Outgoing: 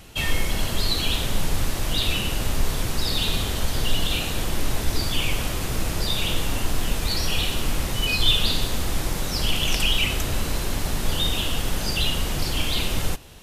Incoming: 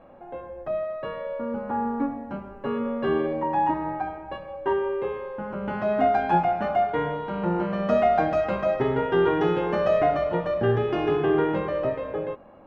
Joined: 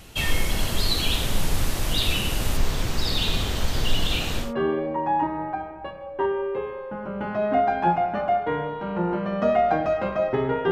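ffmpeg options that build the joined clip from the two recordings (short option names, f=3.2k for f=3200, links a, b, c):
-filter_complex "[0:a]asettb=1/sr,asplit=3[a][b][c];[a]atrim=end=2.574[d];[b]atrim=start=2.57:end=4.54,asetpts=PTS-STARTPTS,afade=t=in:d=0.004:c=qsin,afade=t=out:st=1.966:d=0.004:c=qsin,equalizer=f=11k:w=1.2:g=-9[e];[c]atrim=start=4.536[f];[d][e]acrossfade=d=0.004:c1=hsin:c2=qsin[g];[g][f]acrossfade=d=0.004:c1=qsin:c2=hsin,apad=whole_dur=10.71,atrim=end=10.71,atrim=end=4.54,asetpts=PTS-STARTPTS[h];[1:a]atrim=start=2.83:end=9.18,asetpts=PTS-STARTPTS[i];[h][i]acrossfade=d=0.18:c1=tri:c2=tri"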